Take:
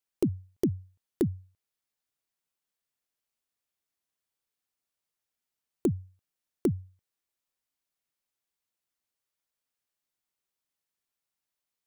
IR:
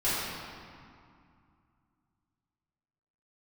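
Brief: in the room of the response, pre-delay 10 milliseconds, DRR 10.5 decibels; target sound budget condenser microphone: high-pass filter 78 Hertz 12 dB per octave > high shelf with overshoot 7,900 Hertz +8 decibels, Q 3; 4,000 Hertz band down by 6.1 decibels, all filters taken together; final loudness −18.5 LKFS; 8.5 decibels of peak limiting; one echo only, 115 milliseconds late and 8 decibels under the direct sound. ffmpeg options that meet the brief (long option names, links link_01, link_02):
-filter_complex "[0:a]equalizer=frequency=4000:width_type=o:gain=-5.5,alimiter=limit=-23dB:level=0:latency=1,aecho=1:1:115:0.398,asplit=2[link_01][link_02];[1:a]atrim=start_sample=2205,adelay=10[link_03];[link_02][link_03]afir=irnorm=-1:irlink=0,volume=-22.5dB[link_04];[link_01][link_04]amix=inputs=2:normalize=0,highpass=78,highshelf=frequency=7900:width_type=q:width=3:gain=8,volume=18.5dB"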